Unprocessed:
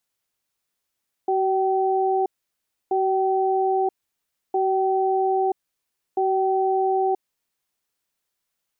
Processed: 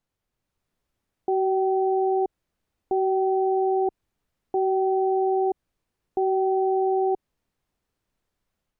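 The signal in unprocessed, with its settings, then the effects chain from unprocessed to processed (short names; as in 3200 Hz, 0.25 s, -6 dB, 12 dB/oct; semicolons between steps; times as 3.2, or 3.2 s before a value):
cadence 379 Hz, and 768 Hz, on 0.98 s, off 0.65 s, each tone -21 dBFS 6.03 s
AGC gain up to 3.5 dB; limiter -20 dBFS; tilt -3.5 dB/oct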